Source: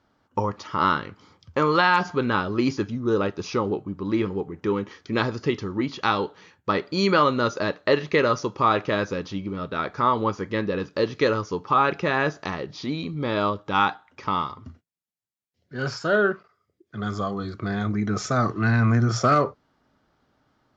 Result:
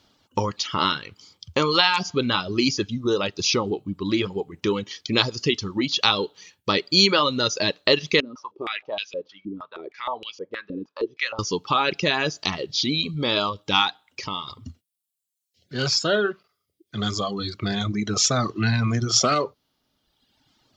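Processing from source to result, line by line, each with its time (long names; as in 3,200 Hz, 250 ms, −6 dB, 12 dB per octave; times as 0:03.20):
0:08.20–0:11.39: band-pass on a step sequencer 6.4 Hz 270–2,900 Hz
0:13.90–0:14.48: downward compressor 2 to 1, threshold −35 dBFS
whole clip: downward compressor 1.5 to 1, threshold −26 dBFS; reverb reduction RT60 1.3 s; high shelf with overshoot 2,300 Hz +10.5 dB, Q 1.5; level +4 dB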